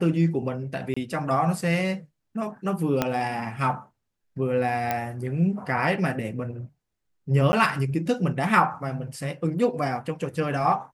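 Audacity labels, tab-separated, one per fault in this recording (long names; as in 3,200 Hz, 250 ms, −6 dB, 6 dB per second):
0.940000	0.960000	drop-out 25 ms
3.020000	3.020000	click −8 dBFS
4.910000	4.910000	click −11 dBFS
7.520000	7.530000	drop-out 10 ms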